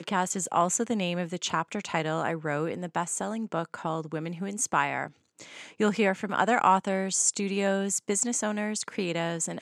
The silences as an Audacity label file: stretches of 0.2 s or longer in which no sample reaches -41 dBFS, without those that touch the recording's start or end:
5.080000	5.390000	silence